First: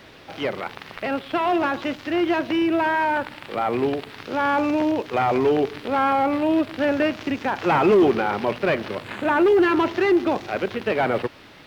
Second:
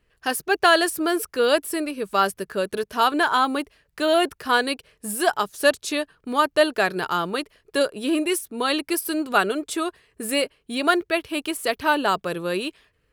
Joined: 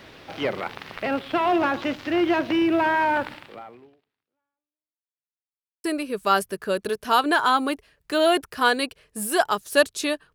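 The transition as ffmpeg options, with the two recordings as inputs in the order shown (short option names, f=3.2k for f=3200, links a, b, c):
-filter_complex "[0:a]apad=whole_dur=10.34,atrim=end=10.34,asplit=2[a][b];[a]atrim=end=5.11,asetpts=PTS-STARTPTS,afade=t=out:st=3.32:d=1.79:c=exp[c];[b]atrim=start=5.11:end=5.84,asetpts=PTS-STARTPTS,volume=0[d];[1:a]atrim=start=1.72:end=6.22,asetpts=PTS-STARTPTS,afade=t=in:d=0.004:c=hsin[e];[c][d][e]concat=n=3:v=0:a=1"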